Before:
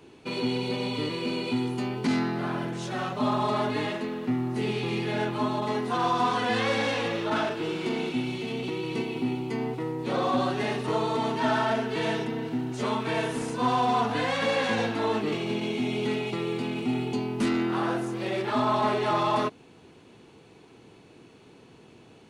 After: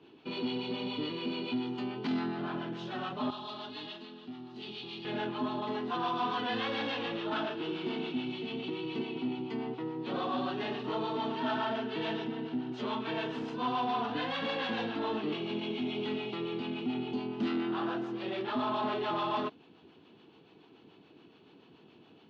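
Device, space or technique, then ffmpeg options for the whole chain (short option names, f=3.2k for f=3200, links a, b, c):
guitar amplifier with harmonic tremolo: -filter_complex "[0:a]acrossover=split=560[a][b];[a]aeval=exprs='val(0)*(1-0.5/2+0.5/2*cos(2*PI*7*n/s))':c=same[c];[b]aeval=exprs='val(0)*(1-0.5/2-0.5/2*cos(2*PI*7*n/s))':c=same[d];[c][d]amix=inputs=2:normalize=0,asoftclip=type=tanh:threshold=-21.5dB,highpass=110,equalizer=f=120:t=q:w=4:g=-6,equalizer=f=300:t=q:w=4:g=3,equalizer=f=530:t=q:w=4:g=-4,equalizer=f=2.1k:t=q:w=4:g=-5,equalizer=f=3.1k:t=q:w=4:g=5,lowpass=f=4.3k:w=0.5412,lowpass=f=4.3k:w=1.3066,asettb=1/sr,asplit=3[e][f][g];[e]atrim=end=3.304[h];[f]atrim=start=3.3:end=5.05,asetpts=PTS-STARTPTS,afade=t=in:d=0.004:c=qsin,afade=t=out:st=1.746:d=0.004:c=qsin,equalizer=f=125:t=o:w=1:g=-10,equalizer=f=250:t=o:w=1:g=-7,equalizer=f=500:t=o:w=1:g=-10,equalizer=f=1k:t=o:w=1:g=-5,equalizer=f=2k:t=o:w=1:g=-10,equalizer=f=4k:t=o:w=1:g=5[i];[g]atrim=start=5.046[j];[h][i]acrossfade=d=0.004:c1=hsin:c2=qsin[k];[k][j]acrossfade=d=0.004:c1=qsin:c2=hsin,volume=-3dB"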